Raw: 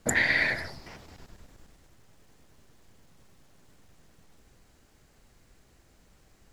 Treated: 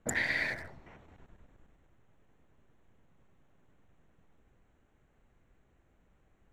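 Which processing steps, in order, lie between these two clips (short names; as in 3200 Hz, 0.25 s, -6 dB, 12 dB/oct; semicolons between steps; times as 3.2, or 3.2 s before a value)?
Wiener smoothing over 9 samples; gain -7 dB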